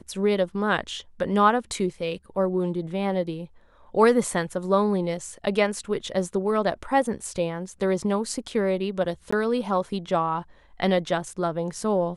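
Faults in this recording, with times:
9.31–9.32 s: dropout 15 ms

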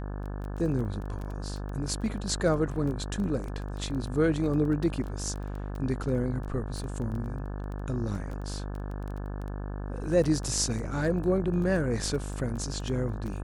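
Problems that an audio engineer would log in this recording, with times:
buzz 50 Hz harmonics 35 -35 dBFS
crackle 12 per s -34 dBFS

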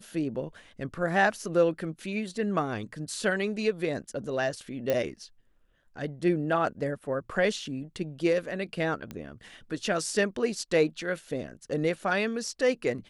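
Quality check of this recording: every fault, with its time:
4.90 s: pop -14 dBFS
9.11 s: pop -23 dBFS

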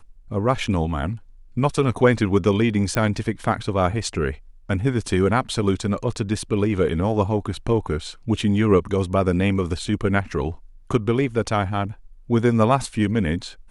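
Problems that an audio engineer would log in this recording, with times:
2.95 s: pop -9 dBFS

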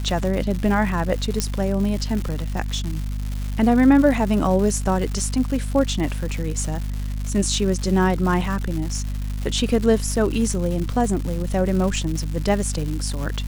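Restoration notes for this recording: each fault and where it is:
crackle 280 per s -27 dBFS
hum 50 Hz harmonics 5 -26 dBFS
1.40 s: pop -6 dBFS

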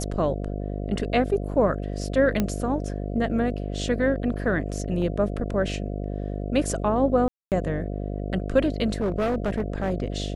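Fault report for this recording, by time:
buzz 50 Hz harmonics 14 -30 dBFS
2.40 s: pop -10 dBFS
5.02 s: dropout 2.1 ms
7.28–7.52 s: dropout 238 ms
9.00–9.92 s: clipped -20.5 dBFS

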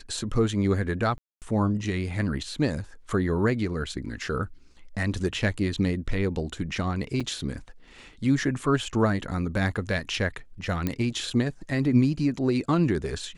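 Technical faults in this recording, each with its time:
1.18–1.42 s: dropout 238 ms
7.20–7.21 s: dropout 5.7 ms
10.87 s: pop -13 dBFS

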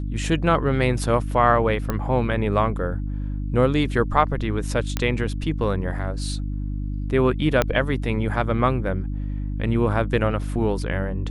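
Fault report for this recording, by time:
hum 50 Hz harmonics 6 -27 dBFS
1.90 s: pop -11 dBFS
4.97 s: pop -8 dBFS
7.62 s: pop -5 dBFS

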